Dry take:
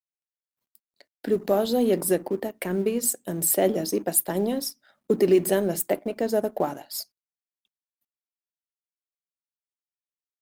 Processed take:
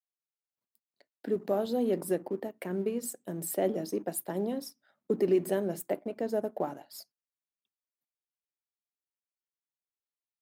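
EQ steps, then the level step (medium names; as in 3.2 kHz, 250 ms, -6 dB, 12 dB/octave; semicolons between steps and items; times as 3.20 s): high-pass 97 Hz; treble shelf 2.4 kHz -8 dB; -6.5 dB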